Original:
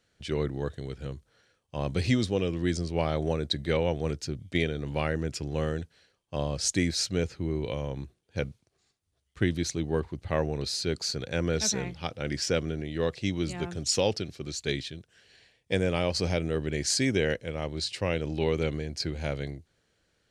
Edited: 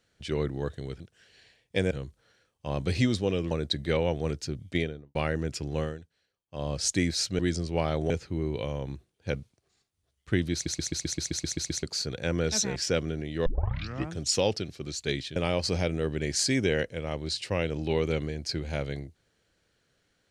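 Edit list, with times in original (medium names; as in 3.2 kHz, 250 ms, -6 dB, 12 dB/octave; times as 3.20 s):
2.60–3.31 s: move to 7.19 s
4.50–4.95 s: studio fade out
5.59–6.50 s: dip -12.5 dB, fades 0.20 s
9.62 s: stutter in place 0.13 s, 10 plays
11.85–12.36 s: delete
13.06 s: tape start 0.68 s
14.96–15.87 s: move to 1.00 s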